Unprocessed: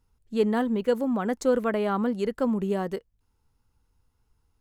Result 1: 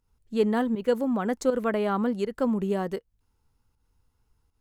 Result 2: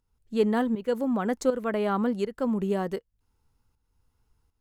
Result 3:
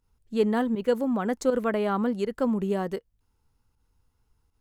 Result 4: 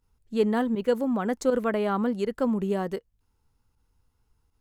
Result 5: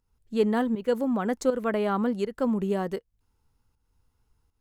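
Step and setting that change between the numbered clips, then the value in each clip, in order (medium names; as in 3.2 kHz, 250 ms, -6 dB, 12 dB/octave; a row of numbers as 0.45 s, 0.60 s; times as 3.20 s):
volume shaper, release: 159 ms, 484 ms, 96 ms, 61 ms, 307 ms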